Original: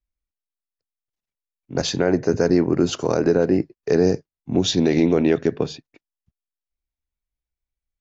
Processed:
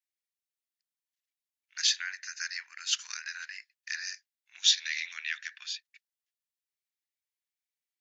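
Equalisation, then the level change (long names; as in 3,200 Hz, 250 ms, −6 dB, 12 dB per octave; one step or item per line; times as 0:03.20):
elliptic high-pass filter 1,700 Hz, stop band 70 dB
+1.0 dB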